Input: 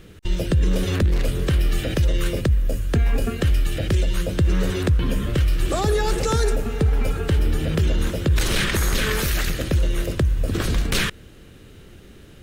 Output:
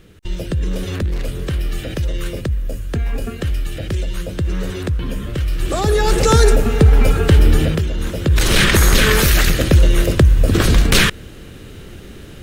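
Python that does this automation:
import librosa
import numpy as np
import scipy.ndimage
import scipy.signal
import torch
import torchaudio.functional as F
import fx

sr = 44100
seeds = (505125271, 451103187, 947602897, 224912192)

y = fx.gain(x, sr, db=fx.line((5.37, -1.5), (6.32, 9.0), (7.62, 9.0), (7.88, -2.0), (8.64, 9.0)))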